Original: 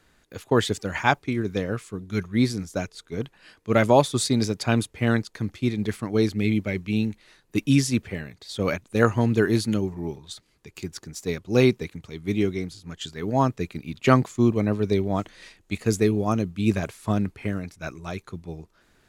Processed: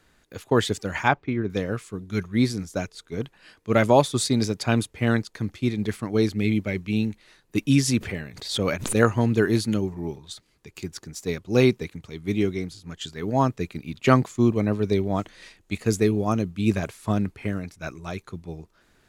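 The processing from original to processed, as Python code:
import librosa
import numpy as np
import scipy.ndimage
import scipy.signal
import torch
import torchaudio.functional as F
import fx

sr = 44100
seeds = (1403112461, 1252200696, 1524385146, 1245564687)

y = fx.lowpass(x, sr, hz=2600.0, slope=12, at=(1.08, 1.5))
y = fx.pre_swell(y, sr, db_per_s=84.0, at=(7.84, 9.04))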